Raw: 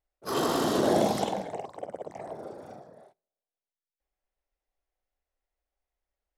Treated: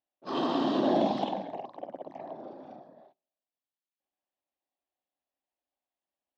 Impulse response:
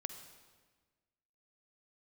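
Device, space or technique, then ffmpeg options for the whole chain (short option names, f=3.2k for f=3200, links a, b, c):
kitchen radio: -af "highpass=210,equalizer=f=270:t=q:w=4:g=6,equalizer=f=450:t=q:w=4:g=-10,equalizer=f=1.4k:t=q:w=4:g=-9,equalizer=f=2.1k:t=q:w=4:g=-8,lowpass=f=3.8k:w=0.5412,lowpass=f=3.8k:w=1.3066"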